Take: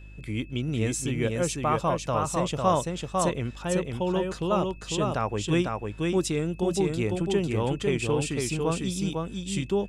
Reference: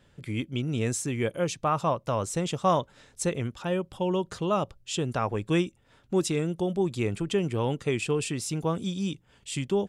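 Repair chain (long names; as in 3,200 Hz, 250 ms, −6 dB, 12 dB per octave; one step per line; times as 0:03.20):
hum removal 51 Hz, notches 7
notch filter 2,600 Hz, Q 30
echo removal 500 ms −3.5 dB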